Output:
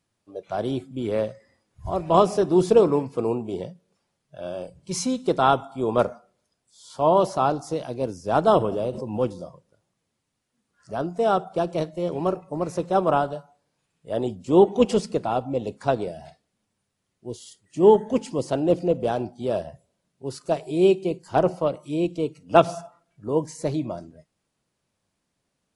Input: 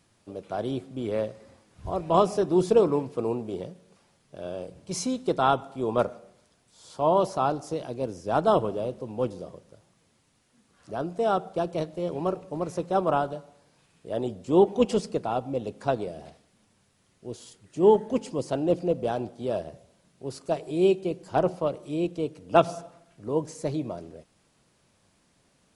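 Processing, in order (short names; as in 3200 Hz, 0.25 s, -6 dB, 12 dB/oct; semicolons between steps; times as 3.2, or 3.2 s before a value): spectral noise reduction 15 dB; 8.54–9.2 backwards sustainer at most 60 dB/s; gain +3.5 dB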